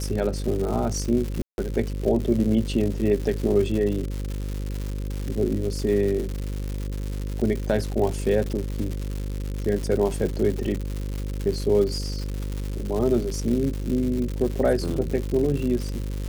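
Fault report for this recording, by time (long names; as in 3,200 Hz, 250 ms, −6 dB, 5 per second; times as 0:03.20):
mains buzz 50 Hz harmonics 11 −29 dBFS
surface crackle 220 per second −28 dBFS
0:01.42–0:01.58: drop-out 161 ms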